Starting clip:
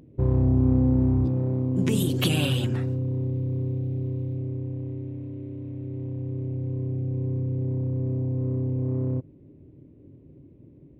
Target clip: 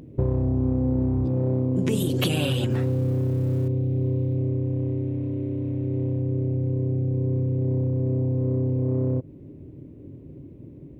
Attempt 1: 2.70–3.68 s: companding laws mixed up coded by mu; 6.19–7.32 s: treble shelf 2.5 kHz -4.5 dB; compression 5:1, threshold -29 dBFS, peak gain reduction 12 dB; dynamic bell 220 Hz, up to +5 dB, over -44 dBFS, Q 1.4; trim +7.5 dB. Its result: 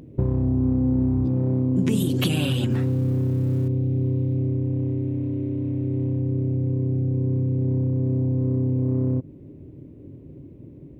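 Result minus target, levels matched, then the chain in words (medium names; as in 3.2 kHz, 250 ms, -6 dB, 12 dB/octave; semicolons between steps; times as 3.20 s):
500 Hz band -3.5 dB
2.70–3.68 s: companding laws mixed up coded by mu; 6.19–7.32 s: treble shelf 2.5 kHz -4.5 dB; compression 5:1, threshold -29 dBFS, peak gain reduction 12 dB; dynamic bell 520 Hz, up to +5 dB, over -44 dBFS, Q 1.4; trim +7.5 dB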